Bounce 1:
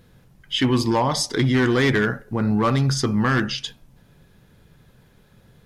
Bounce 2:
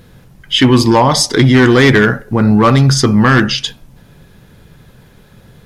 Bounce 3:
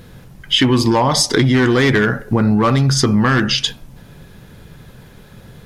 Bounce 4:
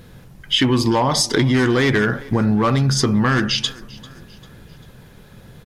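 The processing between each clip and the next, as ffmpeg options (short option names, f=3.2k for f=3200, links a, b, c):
-af "acontrast=55,volume=5dB"
-af "acompressor=threshold=-13dB:ratio=6,volume=2dB"
-af "aecho=1:1:395|790|1185:0.0794|0.0373|0.0175,volume=-3dB"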